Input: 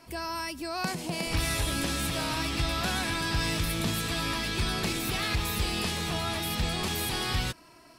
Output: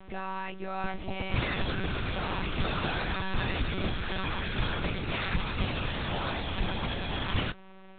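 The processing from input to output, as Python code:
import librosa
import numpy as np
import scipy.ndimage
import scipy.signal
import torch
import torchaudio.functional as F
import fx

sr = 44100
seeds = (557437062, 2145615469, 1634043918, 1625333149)

y = fx.dmg_buzz(x, sr, base_hz=120.0, harmonics=40, level_db=-50.0, tilt_db=-5, odd_only=False)
y = fx.lpc_monotone(y, sr, seeds[0], pitch_hz=190.0, order=10)
y = fx.air_absorb(y, sr, metres=96.0)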